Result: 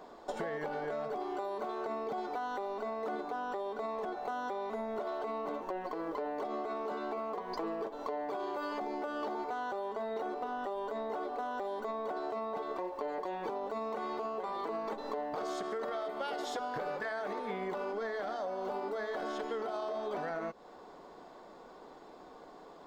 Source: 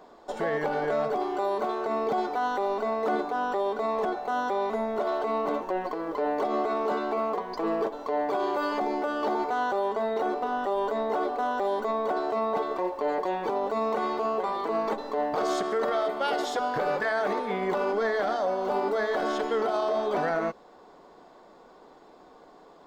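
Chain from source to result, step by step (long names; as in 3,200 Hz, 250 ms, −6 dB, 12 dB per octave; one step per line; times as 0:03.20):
downward compressor 10 to 1, threshold −34 dBFS, peak gain reduction 11.5 dB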